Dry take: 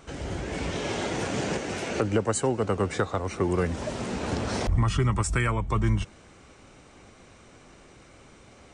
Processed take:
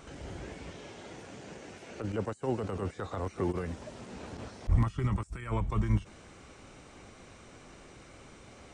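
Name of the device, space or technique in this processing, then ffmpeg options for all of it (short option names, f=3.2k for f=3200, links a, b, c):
de-esser from a sidechain: -filter_complex "[0:a]asplit=2[a][b];[b]highpass=6.4k,apad=whole_len=385204[c];[a][c]sidechaincompress=threshold=-60dB:ratio=20:attack=1.8:release=29"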